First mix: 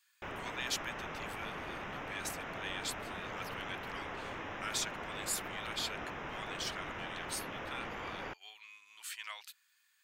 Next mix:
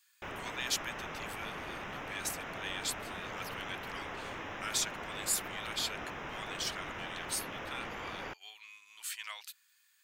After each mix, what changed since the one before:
master: add high-shelf EQ 4,300 Hz +6 dB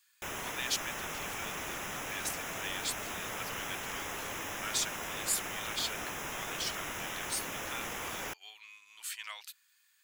background: remove high-frequency loss of the air 260 metres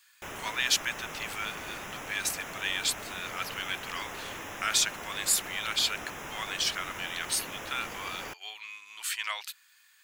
speech +11.0 dB
master: add high-shelf EQ 4,300 Hz −6 dB

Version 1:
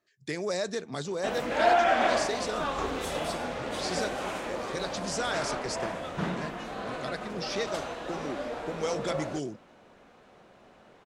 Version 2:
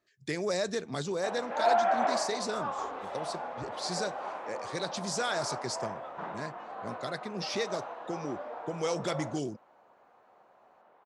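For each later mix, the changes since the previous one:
background: add resonant band-pass 890 Hz, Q 1.8
master: add low-shelf EQ 73 Hz +5.5 dB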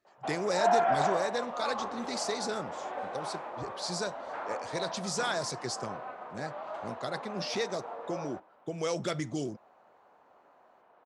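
background: entry −1.00 s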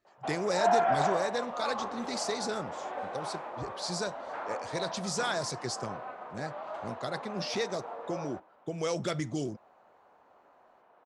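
speech: add low-shelf EQ 67 Hz +10.5 dB

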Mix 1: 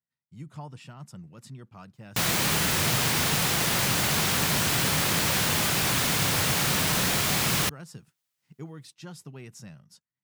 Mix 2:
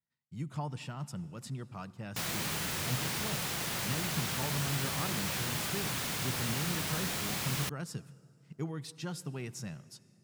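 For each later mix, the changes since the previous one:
background −10.5 dB
reverb: on, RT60 2.6 s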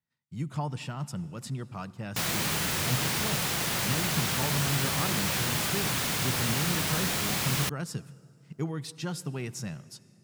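speech +5.0 dB
background +6.0 dB

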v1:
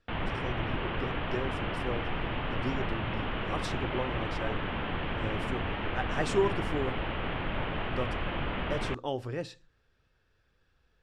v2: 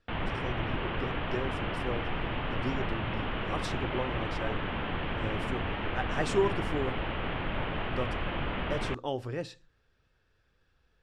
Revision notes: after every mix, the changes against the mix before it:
nothing changed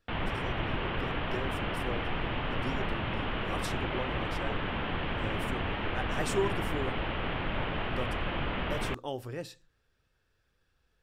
speech −3.5 dB
master: remove high-frequency loss of the air 74 metres

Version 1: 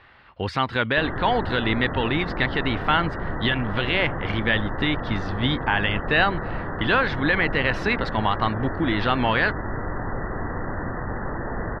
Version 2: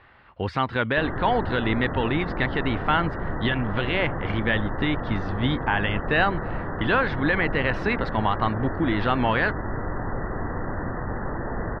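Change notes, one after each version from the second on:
master: add high-shelf EQ 3,400 Hz −11 dB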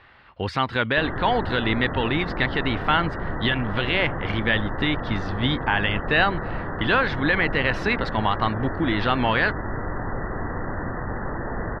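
master: add high-shelf EQ 3,400 Hz +11 dB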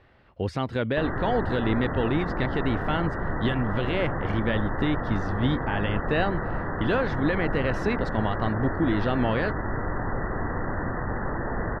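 speech: add flat-topped bell 2,000 Hz −10.5 dB 2.8 octaves

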